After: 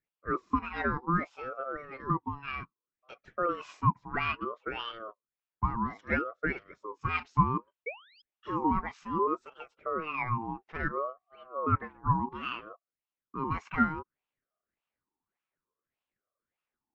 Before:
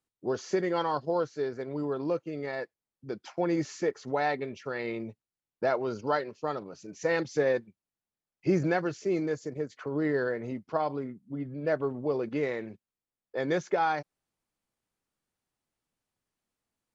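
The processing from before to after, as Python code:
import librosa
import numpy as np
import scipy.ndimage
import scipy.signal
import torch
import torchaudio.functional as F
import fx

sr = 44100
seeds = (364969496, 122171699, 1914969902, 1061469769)

p1 = 10.0 ** (-23.5 / 20.0) * np.tanh(x / 10.0 ** (-23.5 / 20.0))
p2 = x + (p1 * 10.0 ** (-7.5 / 20.0))
p3 = fx.spec_paint(p2, sr, seeds[0], shape='rise', start_s=7.86, length_s=0.36, low_hz=1300.0, high_hz=4300.0, level_db=-35.0)
p4 = fx.wah_lfo(p3, sr, hz=1.7, low_hz=280.0, high_hz=2000.0, q=3.0)
p5 = fx.ring_lfo(p4, sr, carrier_hz=750.0, swing_pct=25, hz=0.62)
y = p5 * 10.0 ** (6.0 / 20.0)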